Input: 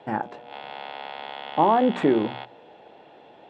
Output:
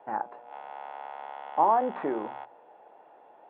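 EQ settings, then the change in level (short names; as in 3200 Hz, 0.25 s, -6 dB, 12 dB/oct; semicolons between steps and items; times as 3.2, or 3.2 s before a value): band-pass 970 Hz, Q 1.3; air absorption 360 m; 0.0 dB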